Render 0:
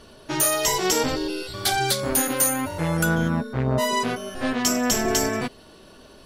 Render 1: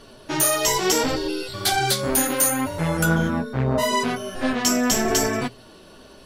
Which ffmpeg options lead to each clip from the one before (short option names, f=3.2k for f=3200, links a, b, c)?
-af "flanger=delay=7.1:depth=8.6:regen=-39:speed=0.73:shape=sinusoidal,acontrast=35,bandreject=f=60:t=h:w=6,bandreject=f=120:t=h:w=6"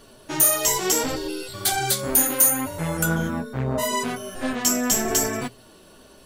-af "aexciter=amount=2.3:drive=5.5:freq=6.8k,volume=-3.5dB"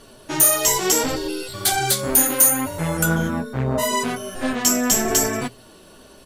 -af "aresample=32000,aresample=44100,volume=3dB"